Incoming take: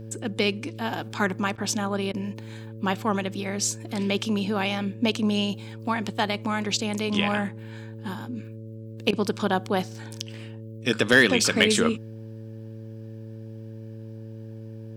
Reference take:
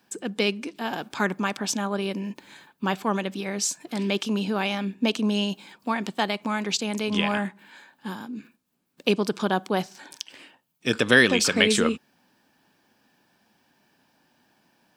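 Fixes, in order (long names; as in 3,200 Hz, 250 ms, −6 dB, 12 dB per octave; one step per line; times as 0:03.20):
clipped peaks rebuilt −7 dBFS
hum removal 111 Hz, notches 5
repair the gap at 0:01.56/0:02.12/0:09.11, 18 ms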